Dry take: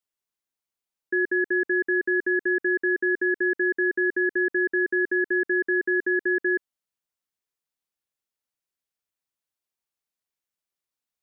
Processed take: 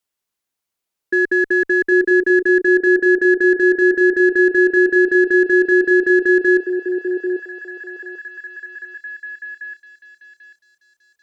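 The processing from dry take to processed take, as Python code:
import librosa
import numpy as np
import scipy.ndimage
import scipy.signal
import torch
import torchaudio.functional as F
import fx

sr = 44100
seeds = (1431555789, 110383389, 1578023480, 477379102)

y = fx.cheby_harmonics(x, sr, harmonics=(6,), levels_db=(-35,), full_scale_db=-16.0)
y = fx.echo_stepped(y, sr, ms=791, hz=450.0, octaves=0.7, feedback_pct=70, wet_db=-2)
y = F.gain(torch.from_numpy(y), 7.5).numpy()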